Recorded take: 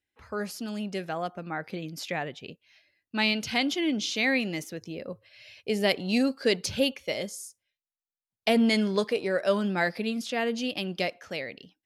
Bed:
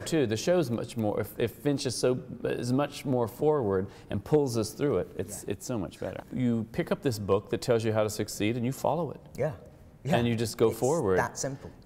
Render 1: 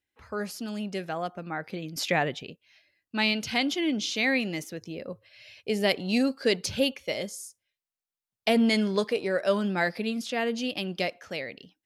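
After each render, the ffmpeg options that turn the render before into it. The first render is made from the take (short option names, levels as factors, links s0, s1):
-filter_complex "[0:a]asplit=3[s0][s1][s2];[s0]atrim=end=1.962[s3];[s1]atrim=start=1.958:end=2.432,asetpts=PTS-STARTPTS,volume=2.11[s4];[s2]atrim=start=2.428[s5];[s3][s4]acrossfade=d=0.004:c1=hsin:c2=hsin[s6];[s6][s5]acrossfade=d=0.004:c1=hsin:c2=hsin"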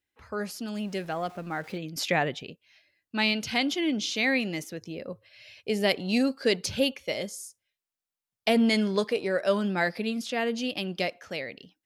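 -filter_complex "[0:a]asettb=1/sr,asplit=3[s0][s1][s2];[s0]atrim=end=0.754[s3];[s1]atrim=start=0.75:end=1.78,asetpts=PTS-STARTPTS,afade=t=in:d=0.004:c=qsin,afade=t=out:st=1.026:d=0.004:c=qsin,aeval=exprs='val(0)+0.5*0.00447*sgn(val(0))':c=same[s4];[s2]atrim=start=1.776[s5];[s3][s4]acrossfade=d=0.004:c1=hsin:c2=qsin[s6];[s6][s5]acrossfade=d=0.004:c1=qsin:c2=hsin"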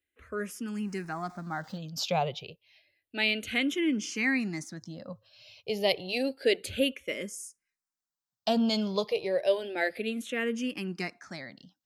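-filter_complex "[0:a]asplit=2[s0][s1];[s1]afreqshift=-0.3[s2];[s0][s2]amix=inputs=2:normalize=1"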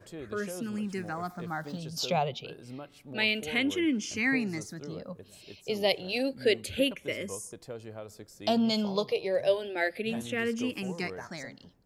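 -filter_complex "[1:a]volume=0.158[s0];[0:a][s0]amix=inputs=2:normalize=0"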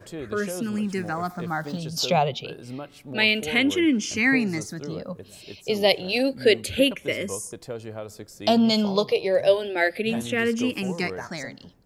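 -af "volume=2.24"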